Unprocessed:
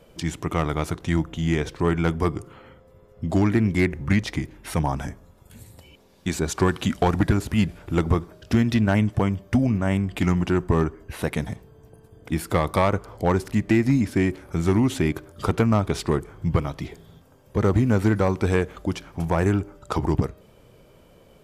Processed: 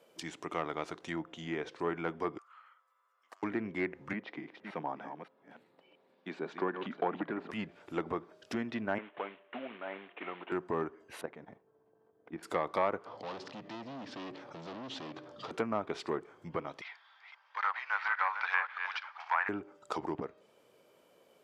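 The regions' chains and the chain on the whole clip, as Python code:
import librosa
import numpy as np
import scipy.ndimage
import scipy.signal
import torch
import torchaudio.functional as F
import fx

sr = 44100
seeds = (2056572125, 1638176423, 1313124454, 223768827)

y = fx.chain(x, sr, fx.over_compress(threshold_db=-26.0, ratio=-1.0),
    fx.ladder_highpass(hz=1100.0, resonance_pct=70),
    fx.doppler_dist(depth_ms=0.2), at=(2.38, 3.43))
y = fx.chain(y, sr, fx.reverse_delay(ms=288, wet_db=-8.0),
    fx.highpass(hz=150.0, slope=24),
    fx.air_absorb(metres=380.0), at=(4.13, 7.51))
y = fx.chain(y, sr, fx.cvsd(bps=16000),
    fx.highpass(hz=440.0, slope=12), at=(8.98, 10.52))
y = fx.chain(y, sr, fx.lowpass(hz=1500.0, slope=12),
    fx.level_steps(step_db=11), at=(11.21, 12.43))
y = fx.chain(y, sr, fx.clip_hard(threshold_db=-28.5),
    fx.cabinet(low_hz=100.0, low_slope=12, high_hz=4800.0, hz=(130.0, 390.0, 1500.0, 2200.0), db=(8, -8, -6, -7)),
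    fx.env_flatten(amount_pct=50), at=(13.06, 15.51))
y = fx.chain(y, sr, fx.reverse_delay(ms=270, wet_db=-8.0),
    fx.ellip_bandpass(low_hz=880.0, high_hz=4900.0, order=3, stop_db=50),
    fx.peak_eq(hz=1600.0, db=11.5, octaves=1.9), at=(16.81, 19.49))
y = fx.env_lowpass_down(y, sr, base_hz=2300.0, full_db=-17.5)
y = scipy.signal.sosfilt(scipy.signal.butter(2, 350.0, 'highpass', fs=sr, output='sos'), y)
y = y * librosa.db_to_amplitude(-8.5)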